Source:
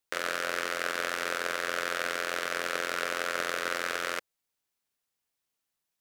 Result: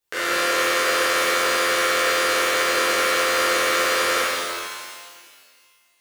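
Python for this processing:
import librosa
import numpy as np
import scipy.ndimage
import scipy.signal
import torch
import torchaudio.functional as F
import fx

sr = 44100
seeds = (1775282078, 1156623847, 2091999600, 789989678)

y = fx.rev_shimmer(x, sr, seeds[0], rt60_s=1.9, semitones=12, shimmer_db=-8, drr_db=-11.0)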